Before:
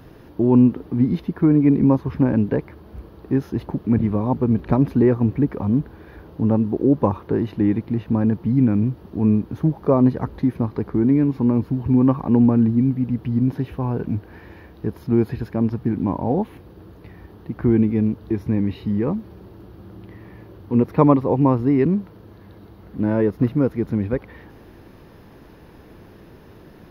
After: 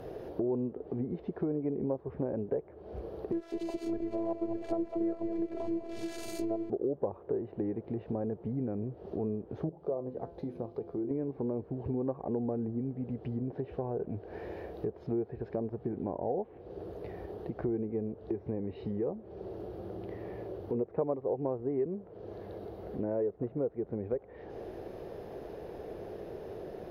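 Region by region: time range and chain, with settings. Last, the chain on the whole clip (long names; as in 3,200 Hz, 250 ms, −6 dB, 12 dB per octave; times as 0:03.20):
0:03.32–0:06.70: spike at every zero crossing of −16.5 dBFS + phases set to zero 333 Hz + echo with a time of its own for lows and highs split 470 Hz, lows 289 ms, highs 204 ms, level −9.5 dB
0:09.69–0:11.11: parametric band 1,800 Hz −7 dB 0.66 octaves + mains-hum notches 50/100/150/200/250/300/350 Hz + tuned comb filter 170 Hz, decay 0.33 s, mix 70%
whole clip: flat-topped bell 530 Hz +13.5 dB 1.3 octaves; treble cut that deepens with the level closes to 1,800 Hz, closed at −14 dBFS; downward compressor 3 to 1, threshold −31 dBFS; level −5 dB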